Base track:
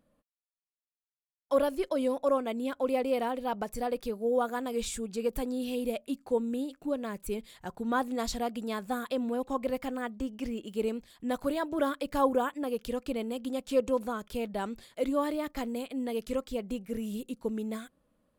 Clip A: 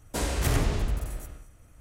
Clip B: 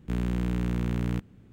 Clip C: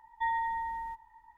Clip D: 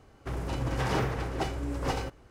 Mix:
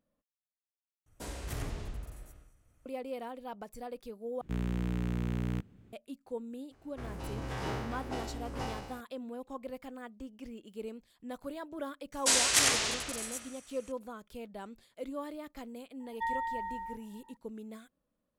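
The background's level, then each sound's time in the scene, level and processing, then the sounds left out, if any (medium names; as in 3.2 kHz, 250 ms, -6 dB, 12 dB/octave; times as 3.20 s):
base track -10.5 dB
1.06 s: replace with A -13 dB
4.41 s: replace with B -5 dB
6.71 s: add D -10.5 dB + spectral sustain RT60 1.12 s
12.12 s: add A + frequency weighting ITU-R 468
16.00 s: add C -3 dB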